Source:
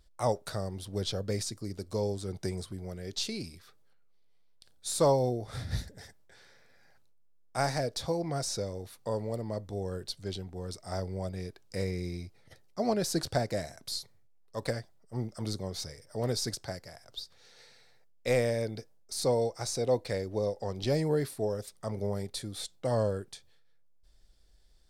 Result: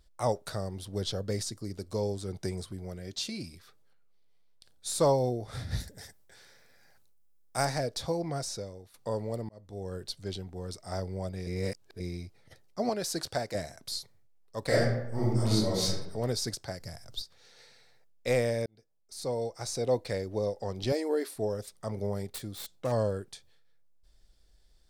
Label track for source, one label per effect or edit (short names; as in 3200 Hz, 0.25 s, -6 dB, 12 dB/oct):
0.900000	1.680000	notch 2400 Hz
2.990000	3.530000	notch comb 430 Hz
5.800000	7.650000	high shelf 7000 Hz +11 dB
8.260000	8.940000	fade out, to -13 dB
9.490000	10.190000	fade in equal-power
11.470000	12.000000	reverse
12.890000	13.550000	low shelf 340 Hz -9 dB
14.660000	15.870000	reverb throw, RT60 0.85 s, DRR -9.5 dB
16.800000	17.220000	tone controls bass +12 dB, treble +6 dB
18.660000	19.870000	fade in
20.920000	21.360000	brick-wall FIR high-pass 250 Hz
22.280000	22.920000	self-modulated delay depth 0.16 ms